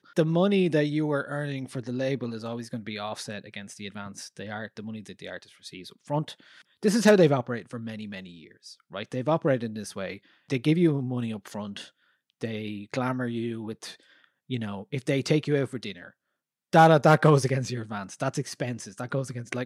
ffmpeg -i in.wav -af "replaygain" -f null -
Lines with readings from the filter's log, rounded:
track_gain = +6.4 dB
track_peak = 0.401